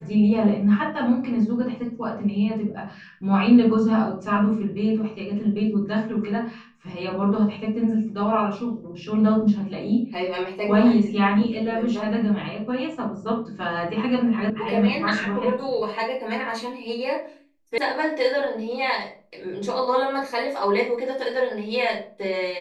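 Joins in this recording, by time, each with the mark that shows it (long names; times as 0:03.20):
0:14.50: cut off before it has died away
0:17.78: cut off before it has died away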